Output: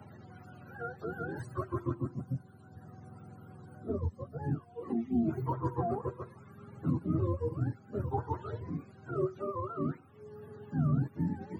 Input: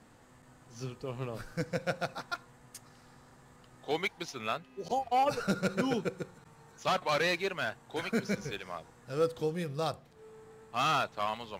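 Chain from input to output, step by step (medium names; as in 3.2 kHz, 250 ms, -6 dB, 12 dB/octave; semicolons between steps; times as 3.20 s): spectrum inverted on a logarithmic axis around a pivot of 430 Hz; 1.94–4.44 s: peaking EQ 2.6 kHz -12 dB 1.3 oct; three bands compressed up and down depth 40%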